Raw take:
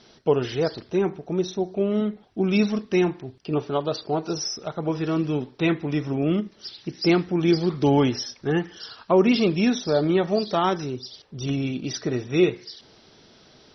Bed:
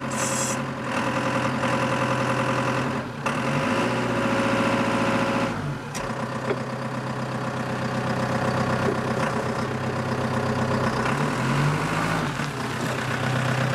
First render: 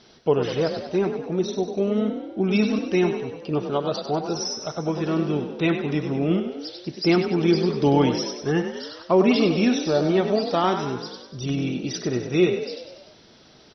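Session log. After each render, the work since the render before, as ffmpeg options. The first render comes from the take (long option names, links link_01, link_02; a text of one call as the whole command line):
ffmpeg -i in.wav -filter_complex "[0:a]asplit=8[link_01][link_02][link_03][link_04][link_05][link_06][link_07][link_08];[link_02]adelay=97,afreqshift=36,volume=-8.5dB[link_09];[link_03]adelay=194,afreqshift=72,volume=-13.4dB[link_10];[link_04]adelay=291,afreqshift=108,volume=-18.3dB[link_11];[link_05]adelay=388,afreqshift=144,volume=-23.1dB[link_12];[link_06]adelay=485,afreqshift=180,volume=-28dB[link_13];[link_07]adelay=582,afreqshift=216,volume=-32.9dB[link_14];[link_08]adelay=679,afreqshift=252,volume=-37.8dB[link_15];[link_01][link_09][link_10][link_11][link_12][link_13][link_14][link_15]amix=inputs=8:normalize=0" out.wav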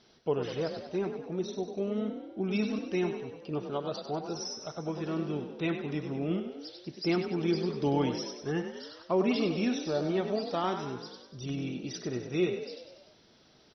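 ffmpeg -i in.wav -af "volume=-9.5dB" out.wav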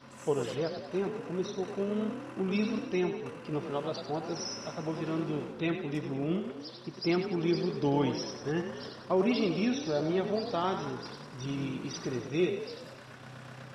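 ffmpeg -i in.wav -i bed.wav -filter_complex "[1:a]volume=-23.5dB[link_01];[0:a][link_01]amix=inputs=2:normalize=0" out.wav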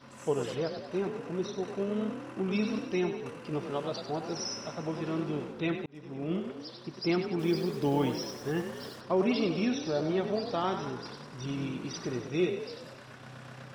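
ffmpeg -i in.wav -filter_complex "[0:a]asettb=1/sr,asplit=3[link_01][link_02][link_03];[link_01]atrim=end=2.664[link_04];[link_02]atrim=start=2.66:end=4.61,asetpts=PTS-STARTPTS,afade=type=in:duration=0.004:curve=qsin,afade=type=out:start_time=1.946:duration=0.004:curve=qsin,highshelf=frequency=5600:gain=4[link_05];[link_03]atrim=start=4.606[link_06];[link_04][link_05]acrossfade=duration=0.004:curve1=hsin:curve2=qsin[link_07];[link_07][link_06]acrossfade=duration=0.004:curve1=qsin:curve2=hsin,asettb=1/sr,asplit=3[link_08][link_09][link_10];[link_08]atrim=end=7.394[link_11];[link_09]atrim=start=7.39:end=9.01,asetpts=PTS-STARTPTS,afade=type=in:duration=0.004:curve=qsin,afade=type=out:start_time=1.616:duration=0.004:curve=qsin,acrusher=bits=7:mix=0:aa=0.5[link_12];[link_10]atrim=start=9.006[link_13];[link_11][link_12]acrossfade=duration=0.004:curve1=hsin:curve2=qsin[link_14];[link_14][link_13]acrossfade=duration=0.004:curve1=qsin:curve2=hsin,asplit=2[link_15][link_16];[link_15]atrim=end=5.86,asetpts=PTS-STARTPTS,afade=type=out:start_time=5.856:duration=0.004:curve=hsin[link_17];[link_16]atrim=start=5.86,asetpts=PTS-STARTPTS,afade=type=in:duration=0.53[link_18];[link_17][link_18]concat=n=2:v=0:a=1" out.wav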